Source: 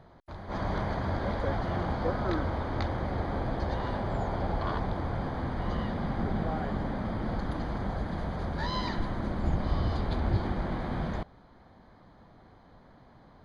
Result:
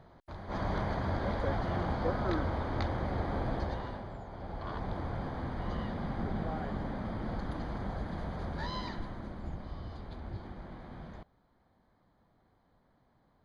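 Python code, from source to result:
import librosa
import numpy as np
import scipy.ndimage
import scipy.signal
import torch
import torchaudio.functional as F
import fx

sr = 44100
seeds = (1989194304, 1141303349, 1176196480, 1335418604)

y = fx.gain(x, sr, db=fx.line((3.57, -2.0), (4.25, -14.5), (4.93, -4.5), (8.57, -4.5), (9.75, -14.0)))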